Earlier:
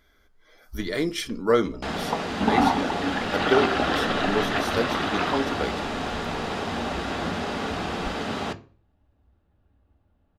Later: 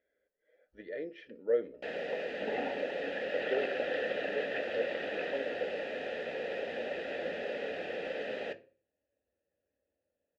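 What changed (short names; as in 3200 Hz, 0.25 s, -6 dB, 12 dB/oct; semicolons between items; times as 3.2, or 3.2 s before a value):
speech: add tape spacing loss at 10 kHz 31 dB; second sound +4.0 dB; master: add vowel filter e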